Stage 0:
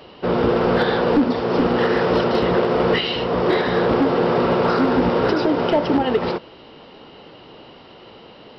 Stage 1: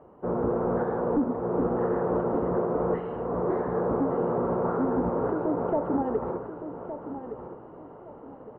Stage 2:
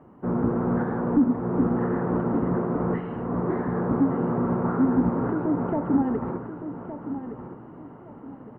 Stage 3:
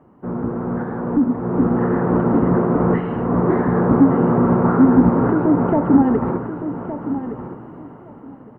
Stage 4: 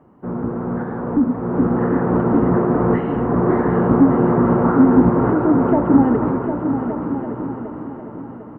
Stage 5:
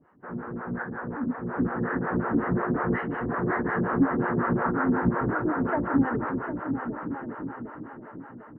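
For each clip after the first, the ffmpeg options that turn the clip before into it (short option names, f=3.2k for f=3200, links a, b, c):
-af "lowpass=f=1.2k:w=0.5412,lowpass=f=1.2k:w=1.3066,areverse,acompressor=mode=upward:threshold=-32dB:ratio=2.5,areverse,aecho=1:1:1165|2330|3495:0.299|0.0866|0.0251,volume=-8.5dB"
-af "equalizer=f=125:t=o:w=1:g=6,equalizer=f=250:t=o:w=1:g=8,equalizer=f=500:t=o:w=1:g=-7,equalizer=f=2k:t=o:w=1:g=6"
-af "dynaudnorm=f=450:g=7:m=11.5dB"
-af "aecho=1:1:752|1504|2256|3008|3760:0.376|0.177|0.083|0.039|0.0183"
-filter_complex "[0:a]equalizer=f=1.7k:w=1.6:g=14.5,acrossover=split=450[a][b];[a]aeval=exprs='val(0)*(1-1/2+1/2*cos(2*PI*5.5*n/s))':c=same[c];[b]aeval=exprs='val(0)*(1-1/2-1/2*cos(2*PI*5.5*n/s))':c=same[d];[c][d]amix=inputs=2:normalize=0,volume=-6.5dB"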